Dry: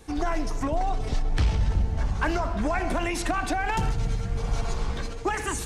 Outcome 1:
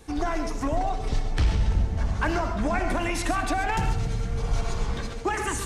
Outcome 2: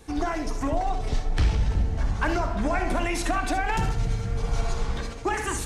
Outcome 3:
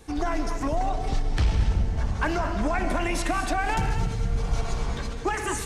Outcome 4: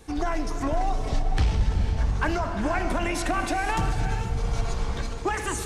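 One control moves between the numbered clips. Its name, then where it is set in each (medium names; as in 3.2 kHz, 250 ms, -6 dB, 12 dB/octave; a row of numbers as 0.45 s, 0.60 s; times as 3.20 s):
gated-style reverb, gate: 160 ms, 90 ms, 260 ms, 530 ms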